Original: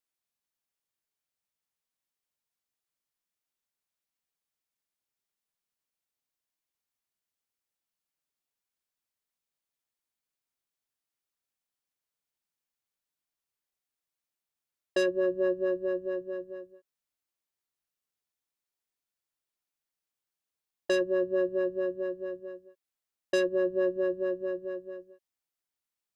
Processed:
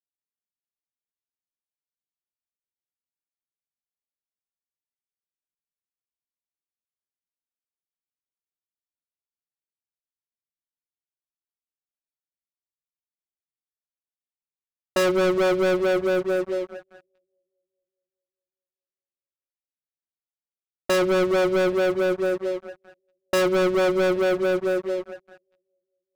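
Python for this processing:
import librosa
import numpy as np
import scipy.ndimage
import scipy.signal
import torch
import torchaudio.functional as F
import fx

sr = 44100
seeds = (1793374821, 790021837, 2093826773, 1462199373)

y = fx.wiener(x, sr, points=41)
y = fx.echo_bbd(y, sr, ms=414, stages=2048, feedback_pct=43, wet_db=-20.0)
y = fx.leveller(y, sr, passes=5)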